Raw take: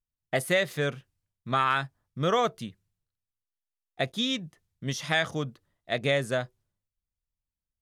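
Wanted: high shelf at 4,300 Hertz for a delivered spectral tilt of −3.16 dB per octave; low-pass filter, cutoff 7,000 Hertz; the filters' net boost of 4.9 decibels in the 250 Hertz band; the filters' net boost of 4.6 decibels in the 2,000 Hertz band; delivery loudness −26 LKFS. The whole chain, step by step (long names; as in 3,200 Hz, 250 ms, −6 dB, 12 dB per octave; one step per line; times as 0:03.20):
low-pass filter 7,000 Hz
parametric band 250 Hz +6 dB
parametric band 2,000 Hz +6 dB
high-shelf EQ 4,300 Hz −3 dB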